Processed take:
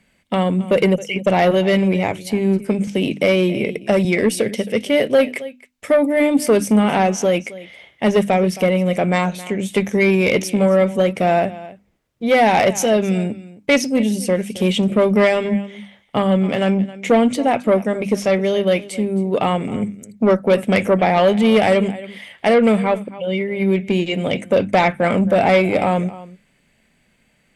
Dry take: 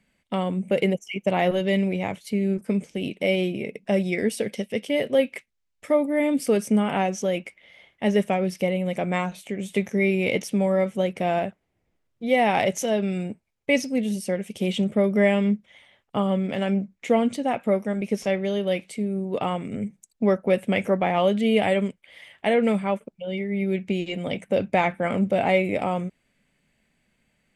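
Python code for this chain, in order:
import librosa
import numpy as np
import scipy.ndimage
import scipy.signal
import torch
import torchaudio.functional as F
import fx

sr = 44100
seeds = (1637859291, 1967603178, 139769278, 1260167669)

y = x + 10.0 ** (-19.0 / 20.0) * np.pad(x, (int(268 * sr / 1000.0), 0))[:len(x)]
y = fx.cheby_harmonics(y, sr, harmonics=(5,), levels_db=(-14,), full_scale_db=-6.5)
y = fx.hum_notches(y, sr, base_hz=50, count=6)
y = fx.band_squash(y, sr, depth_pct=40, at=(2.87, 4.05))
y = y * 10.0 ** (3.0 / 20.0)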